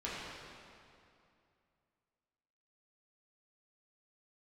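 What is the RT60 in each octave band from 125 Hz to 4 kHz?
2.9, 2.7, 2.6, 2.5, 2.2, 2.0 seconds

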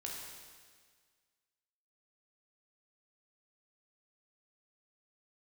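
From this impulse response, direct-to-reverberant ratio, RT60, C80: −2.5 dB, 1.7 s, 2.5 dB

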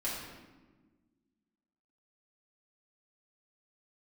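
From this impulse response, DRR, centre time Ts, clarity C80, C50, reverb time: −8.0 dB, 71 ms, 3.0 dB, 0.5 dB, 1.4 s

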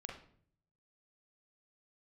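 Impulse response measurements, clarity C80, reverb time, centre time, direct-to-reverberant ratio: 10.5 dB, 0.55 s, 30 ms, 0.0 dB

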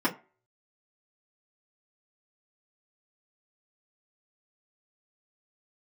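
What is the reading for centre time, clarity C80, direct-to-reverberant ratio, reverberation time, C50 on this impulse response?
12 ms, 21.0 dB, −7.0 dB, 0.35 s, 16.5 dB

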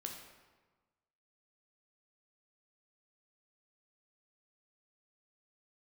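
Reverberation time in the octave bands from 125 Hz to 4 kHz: 1.5, 1.4, 1.3, 1.3, 1.1, 0.90 seconds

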